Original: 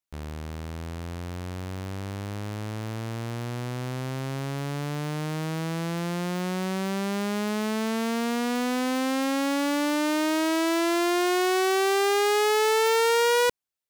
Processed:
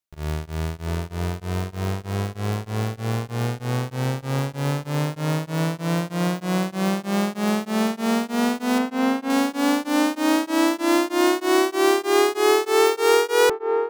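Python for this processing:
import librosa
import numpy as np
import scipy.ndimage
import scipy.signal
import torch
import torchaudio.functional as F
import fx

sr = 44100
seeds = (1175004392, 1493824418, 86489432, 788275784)

p1 = fx.lowpass(x, sr, hz=2600.0, slope=12, at=(8.78, 9.3))
p2 = fx.quant_companded(p1, sr, bits=2)
p3 = p1 + F.gain(torch.from_numpy(p2), -3.5).numpy()
p4 = fx.echo_wet_bandpass(p3, sr, ms=738, feedback_pct=50, hz=590.0, wet_db=-3.5)
p5 = p4 * np.abs(np.cos(np.pi * 3.2 * np.arange(len(p4)) / sr))
y = F.gain(torch.from_numpy(p5), 2.0).numpy()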